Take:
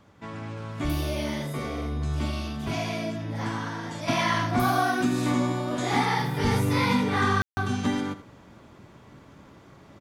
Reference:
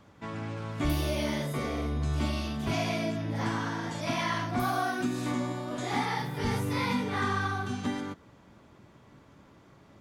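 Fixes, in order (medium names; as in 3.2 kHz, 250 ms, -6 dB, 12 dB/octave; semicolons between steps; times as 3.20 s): room tone fill 7.42–7.57 s; inverse comb 81 ms -13.5 dB; trim 0 dB, from 4.08 s -5.5 dB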